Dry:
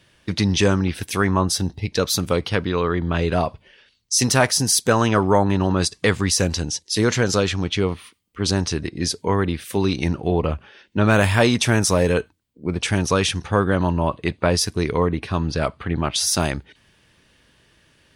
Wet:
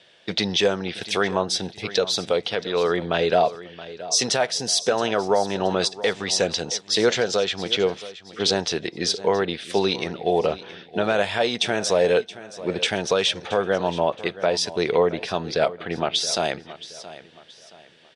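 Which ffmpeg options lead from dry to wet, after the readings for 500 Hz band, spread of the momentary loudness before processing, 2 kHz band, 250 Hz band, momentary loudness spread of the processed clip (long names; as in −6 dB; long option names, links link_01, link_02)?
+1.0 dB, 8 LU, −3.0 dB, −7.5 dB, 8 LU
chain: -af "highpass=260,equalizer=frequency=280:width_type=q:width=4:gain=-8,equalizer=frequency=480:width_type=q:width=4:gain=5,equalizer=frequency=700:width_type=q:width=4:gain=7,equalizer=frequency=1100:width_type=q:width=4:gain=-6,equalizer=frequency=3500:width_type=q:width=4:gain=7,equalizer=frequency=6500:width_type=q:width=4:gain=-4,lowpass=frequency=7500:width=0.5412,lowpass=frequency=7500:width=1.3066,alimiter=limit=-11dB:level=0:latency=1:release=437,aecho=1:1:673|1346|2019:0.158|0.0539|0.0183,volume=2dB"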